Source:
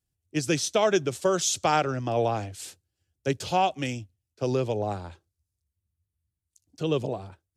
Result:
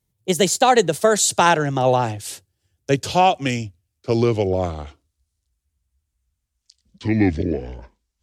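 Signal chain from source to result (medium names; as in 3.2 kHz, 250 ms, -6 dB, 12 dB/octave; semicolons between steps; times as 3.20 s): gliding tape speed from 124% -> 60%; trim +8 dB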